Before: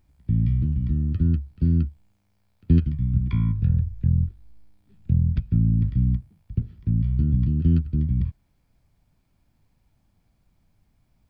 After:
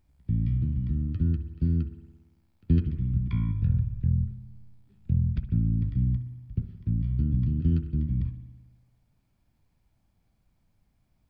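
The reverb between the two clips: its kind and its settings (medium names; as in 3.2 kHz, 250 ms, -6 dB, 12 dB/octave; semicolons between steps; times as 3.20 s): spring tank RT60 1.2 s, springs 57 ms, chirp 20 ms, DRR 10 dB; trim -4.5 dB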